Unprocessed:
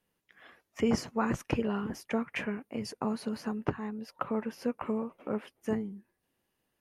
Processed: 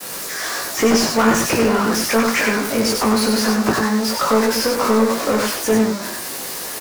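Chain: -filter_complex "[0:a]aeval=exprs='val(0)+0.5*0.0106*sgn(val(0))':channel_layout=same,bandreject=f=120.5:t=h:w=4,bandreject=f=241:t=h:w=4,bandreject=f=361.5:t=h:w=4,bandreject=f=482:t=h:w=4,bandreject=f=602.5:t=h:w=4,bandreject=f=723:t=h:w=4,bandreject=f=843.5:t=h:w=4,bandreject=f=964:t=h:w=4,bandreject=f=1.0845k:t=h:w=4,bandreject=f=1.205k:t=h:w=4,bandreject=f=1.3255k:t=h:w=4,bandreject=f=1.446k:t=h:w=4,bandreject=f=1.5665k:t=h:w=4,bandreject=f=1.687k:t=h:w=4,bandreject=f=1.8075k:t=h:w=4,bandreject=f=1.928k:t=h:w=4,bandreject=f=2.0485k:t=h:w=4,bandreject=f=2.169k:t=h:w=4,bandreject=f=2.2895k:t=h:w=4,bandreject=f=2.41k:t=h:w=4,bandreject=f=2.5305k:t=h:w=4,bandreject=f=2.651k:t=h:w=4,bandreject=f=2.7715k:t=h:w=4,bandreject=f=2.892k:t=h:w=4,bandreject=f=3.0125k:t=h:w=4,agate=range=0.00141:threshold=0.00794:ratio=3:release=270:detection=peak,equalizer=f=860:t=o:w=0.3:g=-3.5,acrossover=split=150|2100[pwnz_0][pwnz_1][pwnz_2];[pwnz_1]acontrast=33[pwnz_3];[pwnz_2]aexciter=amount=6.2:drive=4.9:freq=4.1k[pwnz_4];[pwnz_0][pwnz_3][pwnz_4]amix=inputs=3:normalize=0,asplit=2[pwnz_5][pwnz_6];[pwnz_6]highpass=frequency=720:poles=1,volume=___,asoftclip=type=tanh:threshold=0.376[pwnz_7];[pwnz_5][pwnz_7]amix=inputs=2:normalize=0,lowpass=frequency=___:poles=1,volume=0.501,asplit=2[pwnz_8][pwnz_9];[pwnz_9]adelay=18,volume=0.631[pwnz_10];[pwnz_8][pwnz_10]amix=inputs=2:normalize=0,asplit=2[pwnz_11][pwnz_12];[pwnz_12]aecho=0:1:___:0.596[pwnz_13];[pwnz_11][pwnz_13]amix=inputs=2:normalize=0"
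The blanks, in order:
17.8, 2.7k, 95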